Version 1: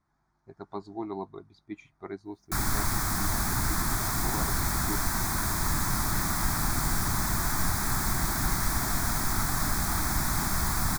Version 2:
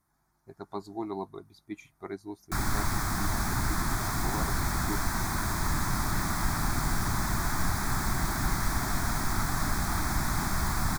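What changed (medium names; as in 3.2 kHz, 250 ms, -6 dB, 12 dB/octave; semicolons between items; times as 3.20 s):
speech: remove distance through air 110 m; background: add treble shelf 6.3 kHz -7.5 dB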